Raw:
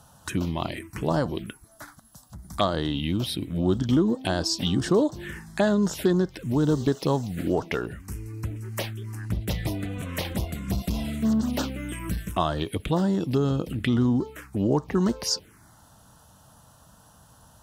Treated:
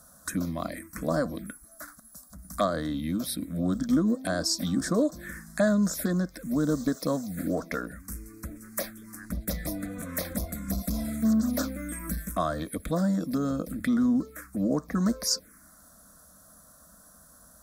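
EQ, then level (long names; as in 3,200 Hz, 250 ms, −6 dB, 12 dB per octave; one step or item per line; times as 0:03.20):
high-shelf EQ 7,600 Hz +8.5 dB
phaser with its sweep stopped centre 580 Hz, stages 8
0.0 dB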